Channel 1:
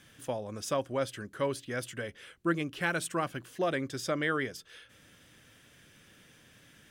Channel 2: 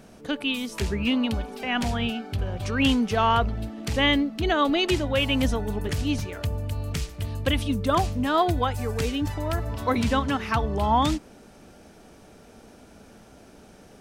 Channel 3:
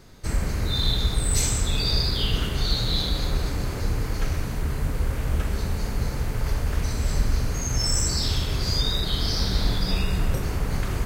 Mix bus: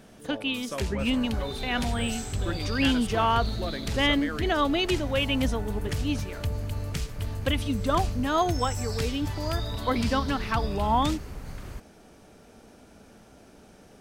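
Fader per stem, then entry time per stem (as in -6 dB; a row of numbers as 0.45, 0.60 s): -5.0, -2.5, -13.5 dB; 0.00, 0.00, 0.75 s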